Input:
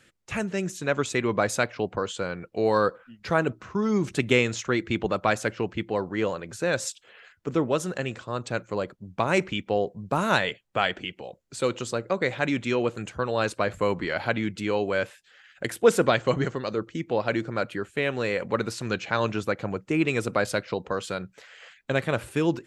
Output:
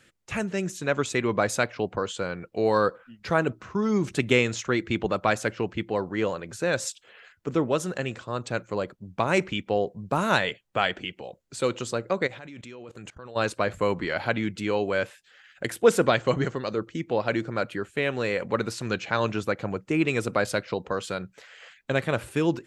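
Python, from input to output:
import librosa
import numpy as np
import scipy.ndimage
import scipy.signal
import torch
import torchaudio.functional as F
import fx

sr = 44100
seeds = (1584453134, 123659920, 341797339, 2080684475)

y = fx.level_steps(x, sr, step_db=21, at=(12.26, 13.35), fade=0.02)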